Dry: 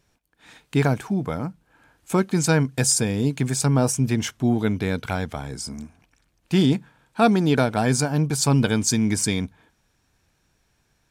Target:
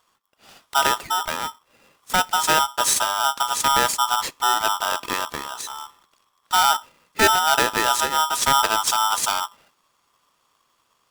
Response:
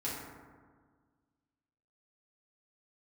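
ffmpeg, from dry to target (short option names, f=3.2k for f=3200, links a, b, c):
-filter_complex "[0:a]asplit=2[a][b];[1:a]atrim=start_sample=2205,afade=t=out:st=0.16:d=0.01,atrim=end_sample=7497[c];[b][c]afir=irnorm=-1:irlink=0,volume=-26.5dB[d];[a][d]amix=inputs=2:normalize=0,aeval=exprs='val(0)*sgn(sin(2*PI*1100*n/s))':c=same"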